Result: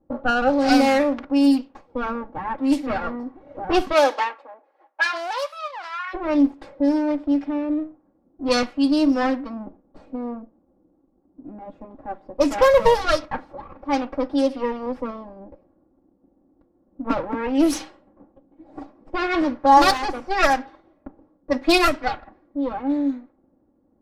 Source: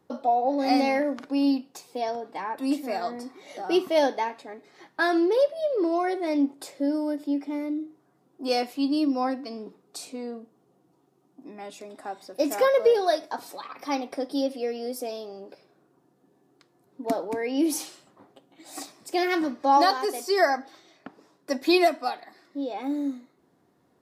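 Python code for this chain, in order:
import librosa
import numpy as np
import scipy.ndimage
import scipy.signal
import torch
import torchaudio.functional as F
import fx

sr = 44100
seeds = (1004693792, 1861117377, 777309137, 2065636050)

y = fx.lower_of_two(x, sr, delay_ms=3.6)
y = fx.env_lowpass(y, sr, base_hz=480.0, full_db=-19.5)
y = fx.highpass(y, sr, hz=fx.line((3.92, 320.0), (6.13, 1300.0)), slope=24, at=(3.92, 6.13), fade=0.02)
y = F.gain(torch.from_numpy(y), 6.5).numpy()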